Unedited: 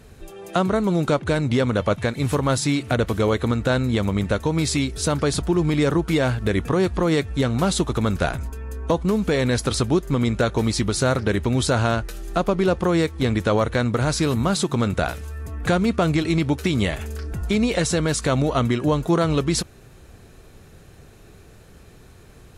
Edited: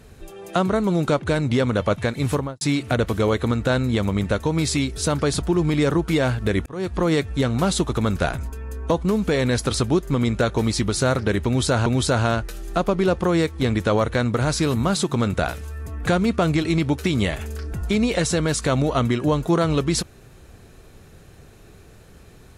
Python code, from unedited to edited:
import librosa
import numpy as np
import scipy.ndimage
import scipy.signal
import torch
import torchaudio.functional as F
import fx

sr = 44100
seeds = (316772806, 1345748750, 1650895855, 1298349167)

y = fx.studio_fade_out(x, sr, start_s=2.31, length_s=0.3)
y = fx.edit(y, sr, fx.fade_in_span(start_s=6.66, length_s=0.35),
    fx.repeat(start_s=11.46, length_s=0.4, count=2), tone=tone)